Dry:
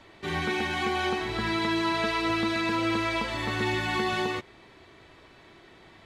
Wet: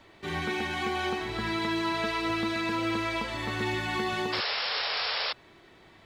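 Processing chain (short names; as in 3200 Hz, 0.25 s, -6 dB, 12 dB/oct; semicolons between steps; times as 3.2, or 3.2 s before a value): companded quantiser 8-bit; painted sound noise, 4.32–5.33, 410–5500 Hz -28 dBFS; gain -2.5 dB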